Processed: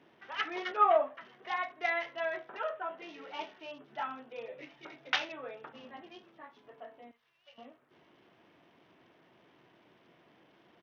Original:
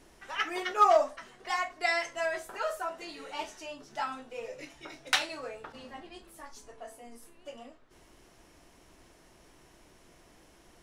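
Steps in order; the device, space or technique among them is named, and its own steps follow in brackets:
0:07.11–0:07.58: guitar amp tone stack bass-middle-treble 10-0-10
Bluetooth headset (high-pass filter 120 Hz 24 dB per octave; downsampling to 8,000 Hz; level −3 dB; SBC 64 kbit/s 48,000 Hz)

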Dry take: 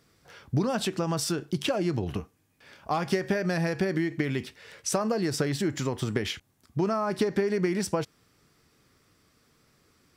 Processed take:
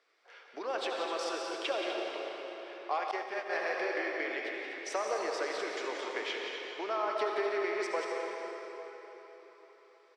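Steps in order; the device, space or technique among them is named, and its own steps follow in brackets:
station announcement (band-pass filter 410–3,900 Hz; parametric band 2,200 Hz +4 dB 0.33 octaves; loudspeakers that aren't time-aligned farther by 61 metres −8 dB, 87 metres −11 dB; convolution reverb RT60 4.2 s, pre-delay 64 ms, DRR 0.5 dB)
0:03.11–0:03.53: downward expander −22 dBFS
high-pass filter 380 Hz 24 dB per octave
level −4.5 dB

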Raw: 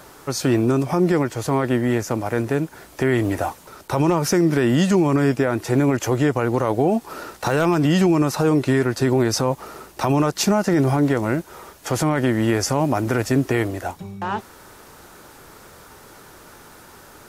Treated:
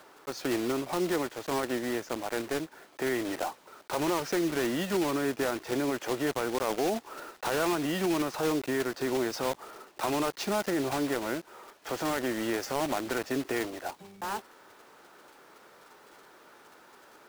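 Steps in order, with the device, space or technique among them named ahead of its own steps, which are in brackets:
early digital voice recorder (band-pass filter 300–3,900 Hz; one scale factor per block 3 bits)
level −8.5 dB

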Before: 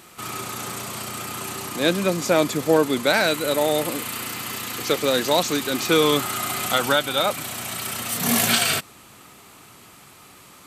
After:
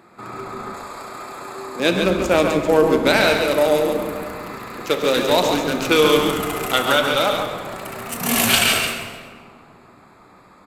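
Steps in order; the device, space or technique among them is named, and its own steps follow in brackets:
adaptive Wiener filter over 15 samples
PA in a hall (high-pass filter 170 Hz 6 dB per octave; parametric band 2,700 Hz +6 dB 0.4 octaves; single-tap delay 142 ms −6.5 dB; convolution reverb RT60 1.9 s, pre-delay 3 ms, DRR 6 dB)
0:00.74–0:01.80: bass and treble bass −15 dB, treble +6 dB
echo with shifted repeats 130 ms, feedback 39%, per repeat −130 Hz, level −11.5 dB
level +2 dB

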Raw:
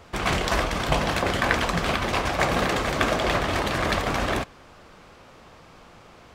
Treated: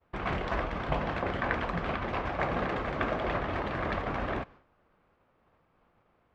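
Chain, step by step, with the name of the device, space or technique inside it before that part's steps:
hearing-loss simulation (low-pass filter 2,100 Hz 12 dB per octave; downward expander −40 dBFS)
level −7 dB

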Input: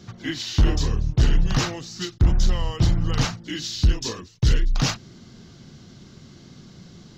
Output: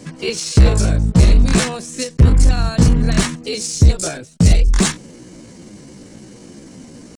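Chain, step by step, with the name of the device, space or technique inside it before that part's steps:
chipmunk voice (pitch shifter +6 semitones)
level +7 dB

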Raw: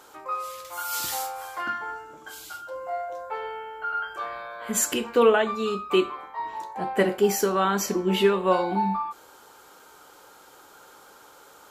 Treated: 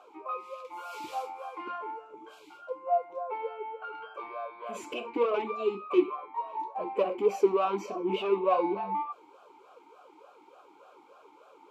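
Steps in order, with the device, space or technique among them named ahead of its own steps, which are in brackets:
talk box (tube saturation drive 20 dB, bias 0.25; formant filter swept between two vowels a-u 3.4 Hz)
level +8 dB

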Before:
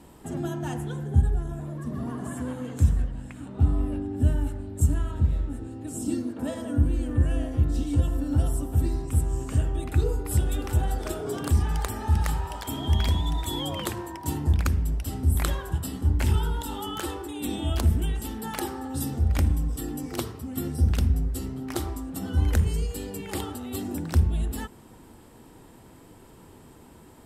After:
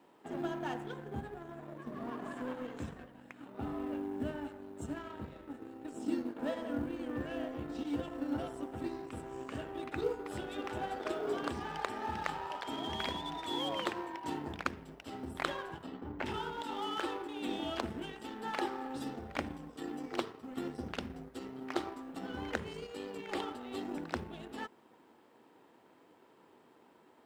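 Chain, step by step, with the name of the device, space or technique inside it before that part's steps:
phone line with mismatched companding (band-pass filter 340–3,300 Hz; mu-law and A-law mismatch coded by A)
0:15.83–0:16.26: parametric band 9,600 Hz −14.5 dB 2.4 octaves

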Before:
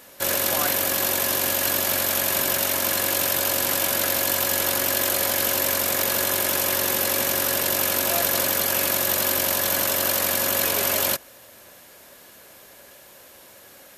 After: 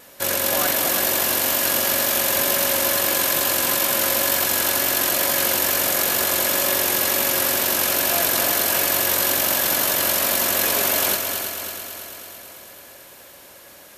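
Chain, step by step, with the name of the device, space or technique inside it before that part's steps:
multi-head tape echo (echo machine with several playback heads 110 ms, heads second and third, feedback 64%, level −8 dB; tape wow and flutter 21 cents)
level +1 dB

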